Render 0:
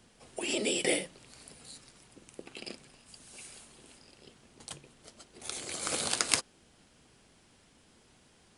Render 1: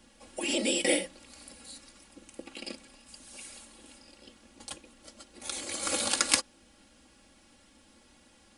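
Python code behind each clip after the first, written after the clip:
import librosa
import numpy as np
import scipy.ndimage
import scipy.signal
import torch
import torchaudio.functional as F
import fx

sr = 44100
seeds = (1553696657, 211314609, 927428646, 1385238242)

y = x + 0.9 * np.pad(x, (int(3.6 * sr / 1000.0), 0))[:len(x)]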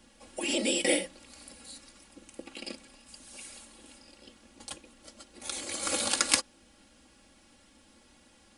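y = x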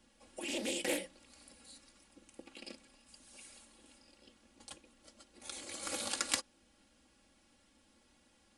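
y = fx.doppler_dist(x, sr, depth_ms=0.19)
y = F.gain(torch.from_numpy(y), -8.5).numpy()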